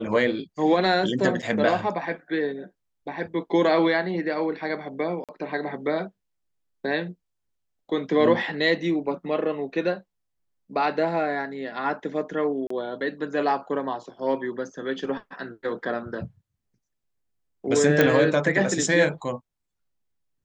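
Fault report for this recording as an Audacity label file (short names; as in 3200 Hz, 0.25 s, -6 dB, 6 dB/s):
1.420000	1.430000	gap 6.8 ms
5.240000	5.290000	gap 47 ms
12.670000	12.700000	gap 34 ms
18.010000	18.010000	pop -6 dBFS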